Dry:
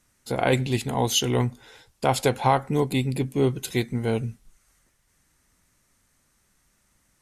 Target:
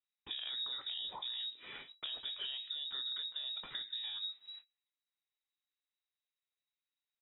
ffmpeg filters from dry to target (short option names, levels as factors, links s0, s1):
-filter_complex "[0:a]agate=range=0.0224:threshold=0.00141:ratio=16:detection=peak,acrossover=split=120|250|810|2900[s0][s1][s2][s3][s4];[s0]acompressor=threshold=0.0251:ratio=4[s5];[s1]acompressor=threshold=0.0126:ratio=4[s6];[s2]acompressor=threshold=0.0447:ratio=4[s7];[s3]acompressor=threshold=0.00891:ratio=4[s8];[s4]acompressor=threshold=0.01:ratio=4[s9];[s5][s6][s7][s8][s9]amix=inputs=5:normalize=0,alimiter=level_in=1.06:limit=0.0631:level=0:latency=1:release=36,volume=0.944,acompressor=threshold=0.00708:ratio=8,asplit=2[s10][s11];[s11]adelay=23,volume=0.266[s12];[s10][s12]amix=inputs=2:normalize=0,lowpass=f=3300:t=q:w=0.5098,lowpass=f=3300:t=q:w=0.6013,lowpass=f=3300:t=q:w=0.9,lowpass=f=3300:t=q:w=2.563,afreqshift=-3900,volume=1.5"